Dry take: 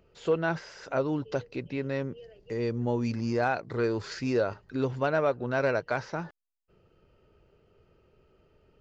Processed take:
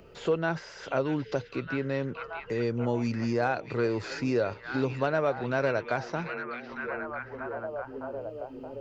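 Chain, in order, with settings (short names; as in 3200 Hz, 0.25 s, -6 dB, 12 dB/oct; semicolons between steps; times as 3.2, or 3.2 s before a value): delay with a stepping band-pass 0.625 s, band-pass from 2700 Hz, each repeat -0.7 oct, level -4 dB; three-band squash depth 40%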